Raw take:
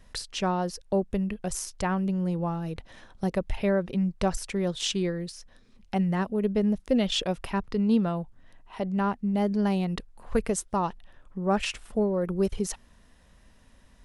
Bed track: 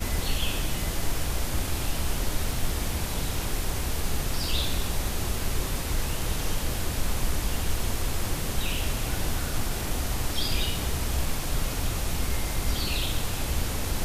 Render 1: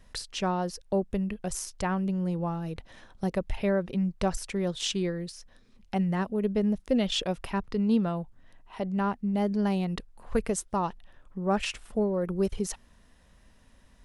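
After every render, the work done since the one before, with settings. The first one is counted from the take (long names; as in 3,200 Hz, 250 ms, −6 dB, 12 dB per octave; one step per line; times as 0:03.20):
level −1.5 dB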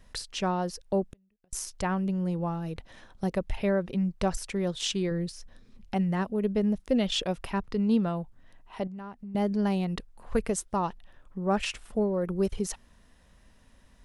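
0:01.11–0:01.53: gate with flip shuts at −30 dBFS, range −39 dB
0:05.11–0:05.94: low-shelf EQ 320 Hz +6.5 dB
0:08.87–0:09.35: downward compressor 3 to 1, threshold −42 dBFS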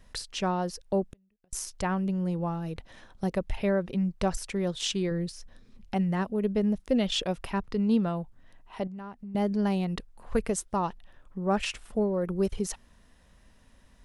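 no processing that can be heard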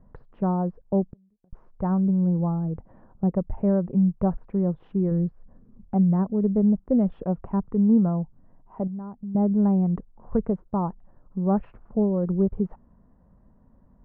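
low-pass filter 1,100 Hz 24 dB per octave
parametric band 170 Hz +8 dB 1.4 octaves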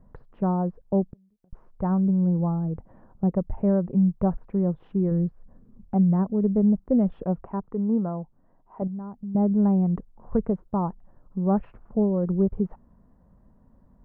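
0:07.43–0:08.82: bass and treble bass −9 dB, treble −13 dB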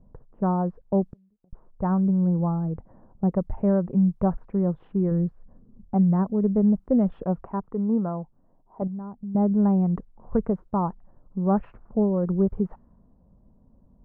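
low-pass that shuts in the quiet parts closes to 710 Hz, open at −21 dBFS
dynamic equaliser 1,300 Hz, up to +4 dB, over −43 dBFS, Q 0.94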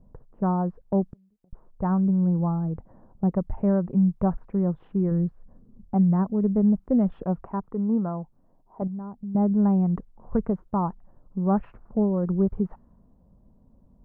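dynamic equaliser 500 Hz, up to −3 dB, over −37 dBFS, Q 1.9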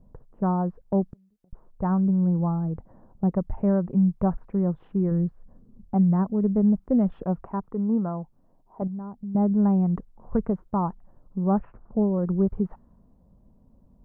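0:11.44–0:12.19: low-pass filter 1,500 Hz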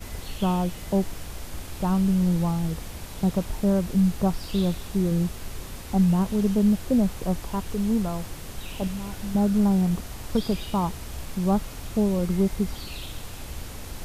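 mix in bed track −8.5 dB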